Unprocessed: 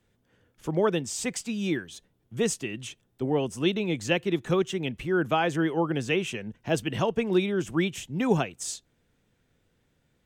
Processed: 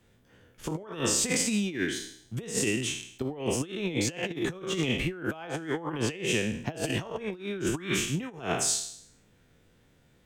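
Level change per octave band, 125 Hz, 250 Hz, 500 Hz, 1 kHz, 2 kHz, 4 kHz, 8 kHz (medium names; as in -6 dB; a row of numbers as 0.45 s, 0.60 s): -2.5 dB, -3.5 dB, -5.5 dB, -6.5 dB, -0.5 dB, +2.0 dB, +6.5 dB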